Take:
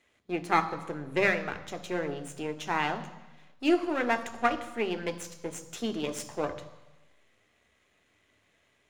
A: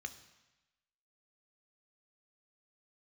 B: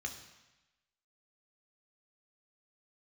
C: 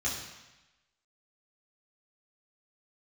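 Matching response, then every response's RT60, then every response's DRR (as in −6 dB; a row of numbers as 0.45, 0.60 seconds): A; 1.0, 1.0, 1.0 seconds; 8.5, 3.5, −6.5 decibels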